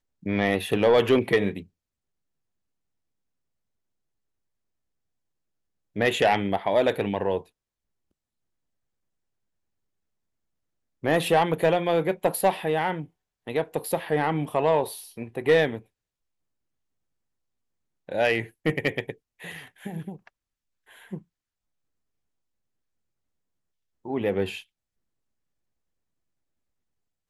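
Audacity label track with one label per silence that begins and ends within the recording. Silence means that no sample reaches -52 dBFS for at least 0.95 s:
1.660000	5.960000	silence
7.480000	11.030000	silence
15.830000	18.080000	silence
21.220000	24.050000	silence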